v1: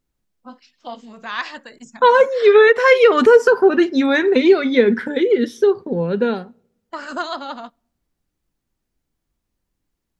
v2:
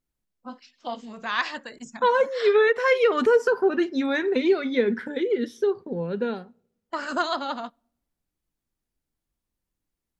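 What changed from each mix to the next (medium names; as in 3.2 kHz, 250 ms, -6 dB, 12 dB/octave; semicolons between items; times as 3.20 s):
second voice -8.5 dB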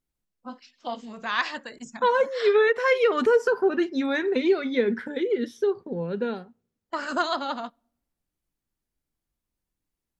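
second voice: send -10.5 dB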